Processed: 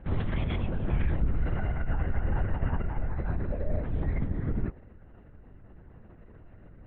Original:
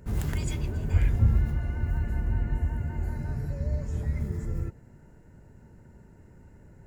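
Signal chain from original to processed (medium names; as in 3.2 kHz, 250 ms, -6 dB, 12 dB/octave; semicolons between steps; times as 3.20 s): dynamic bell 820 Hz, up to +4 dB, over -51 dBFS, Q 0.77; peak limiter -20.5 dBFS, peak gain reduction 9.5 dB; LPC vocoder at 8 kHz whisper; trim +1.5 dB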